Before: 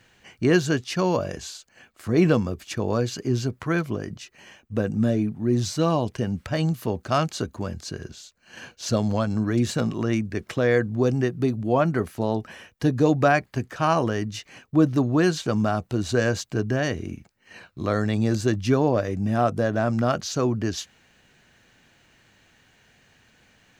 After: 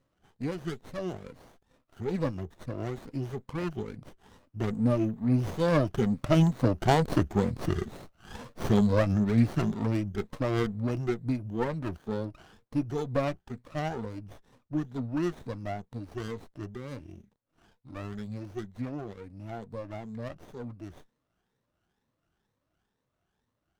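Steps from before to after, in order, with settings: drifting ripple filter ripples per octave 0.98, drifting +2.2 Hz, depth 22 dB; Doppler pass-by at 7.45 s, 12 m/s, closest 12 m; sliding maximum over 17 samples

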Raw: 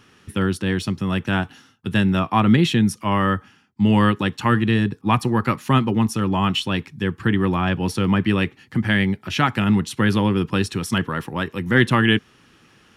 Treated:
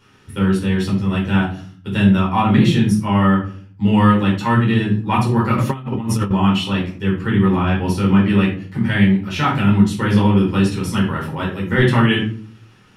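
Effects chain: simulated room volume 370 m³, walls furnished, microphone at 4.6 m; 5.58–6.31 s: compressor with a negative ratio -13 dBFS, ratio -0.5; trim -6.5 dB

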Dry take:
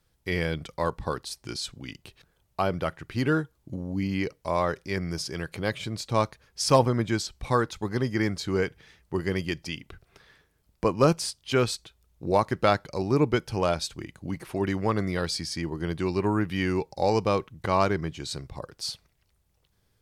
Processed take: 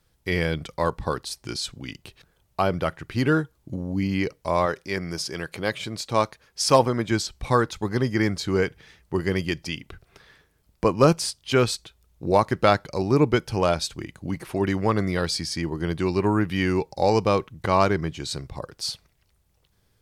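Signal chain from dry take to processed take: 4.66–7.11 s: bass shelf 160 Hz -9 dB; trim +3.5 dB

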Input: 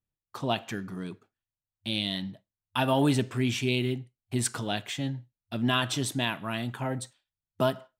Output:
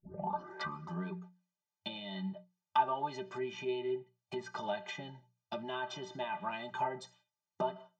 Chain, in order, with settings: tape start-up on the opening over 1.01 s; compression 12:1, threshold -34 dBFS, peak gain reduction 14.5 dB; high-pass 130 Hz 12 dB/octave; resonant high shelf 7.9 kHz -8.5 dB, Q 3; hum notches 60/120/180 Hz; inharmonic resonator 180 Hz, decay 0.2 s, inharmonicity 0.03; low-pass that closes with the level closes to 2.5 kHz, closed at -46.5 dBFS; peaking EQ 850 Hz +12.5 dB 1 oct; trim +8.5 dB

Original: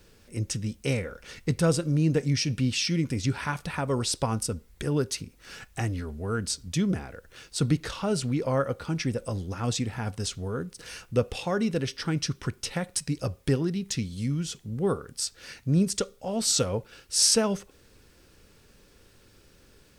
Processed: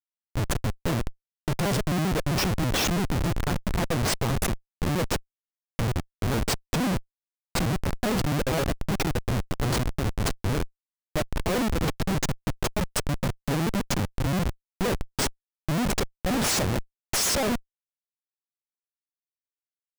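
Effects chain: pitch shift switched off and on +3.5 st, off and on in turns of 66 ms; mains buzz 400 Hz, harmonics 7, -63 dBFS -3 dB/octave; Schmitt trigger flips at -28 dBFS; trim +5.5 dB

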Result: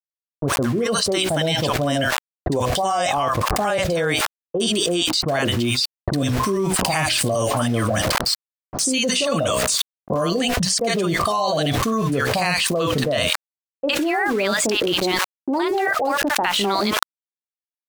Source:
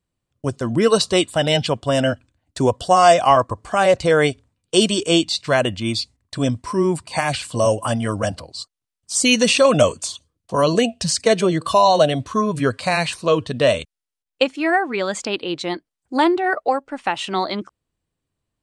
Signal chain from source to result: fade-in on the opening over 0.90 s; hum notches 60/120/180/240/300/360/420/480/540/600 Hz; small samples zeroed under -34.5 dBFS; bands offset in time lows, highs 60 ms, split 860 Hz; speed mistake 24 fps film run at 25 fps; level flattener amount 100%; trim -10 dB

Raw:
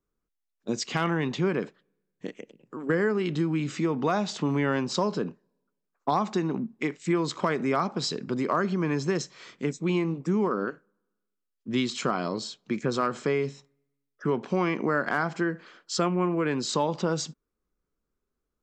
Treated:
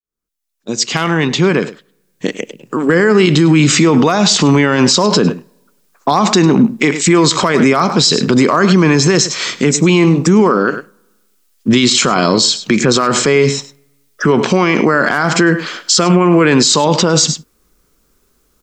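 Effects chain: fade-in on the opening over 3.91 s; treble shelf 3 kHz +10.5 dB; delay 102 ms -17.5 dB; loudness maximiser +24 dB; trim -1 dB

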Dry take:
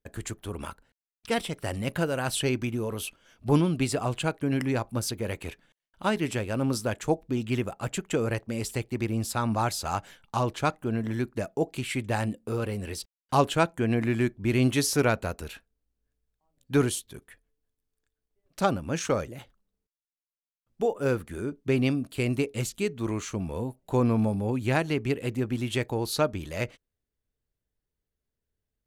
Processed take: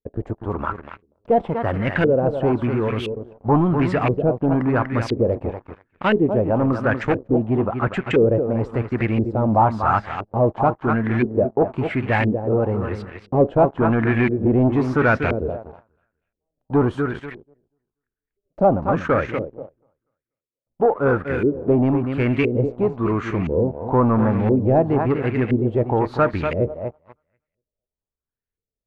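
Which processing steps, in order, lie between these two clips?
filtered feedback delay 242 ms, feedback 25%, low-pass 4.8 kHz, level -9 dB; waveshaping leveller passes 3; LFO low-pass saw up 0.98 Hz 400–2400 Hz; trim -2.5 dB

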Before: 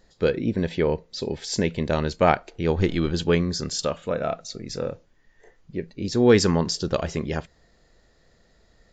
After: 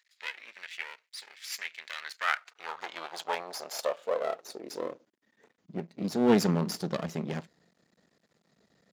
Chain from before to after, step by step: half-wave rectifier; high-pass sweep 2.1 kHz -> 180 Hz, 1.83–5.69 s; trim -4.5 dB

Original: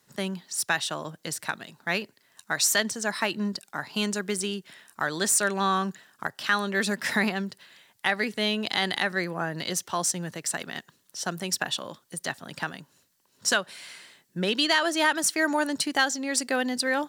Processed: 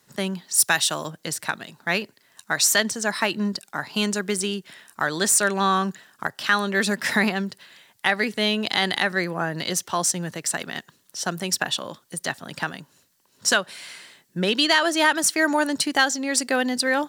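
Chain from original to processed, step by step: 0.53–1.07 s: treble shelf 7.3 kHz -> 4.2 kHz +11 dB; trim +4 dB

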